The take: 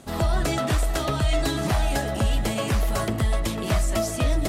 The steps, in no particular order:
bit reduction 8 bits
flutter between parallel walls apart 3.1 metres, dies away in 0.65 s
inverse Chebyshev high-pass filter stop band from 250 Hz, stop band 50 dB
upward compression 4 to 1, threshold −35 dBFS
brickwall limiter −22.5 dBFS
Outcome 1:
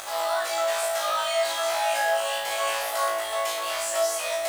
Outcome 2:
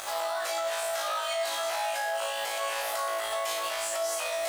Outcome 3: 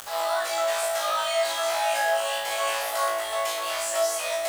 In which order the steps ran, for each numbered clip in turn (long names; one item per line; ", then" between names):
inverse Chebyshev high-pass filter, then brickwall limiter, then upward compression, then bit reduction, then flutter between parallel walls
inverse Chebyshev high-pass filter, then upward compression, then bit reduction, then flutter between parallel walls, then brickwall limiter
inverse Chebyshev high-pass filter, then brickwall limiter, then bit reduction, then flutter between parallel walls, then upward compression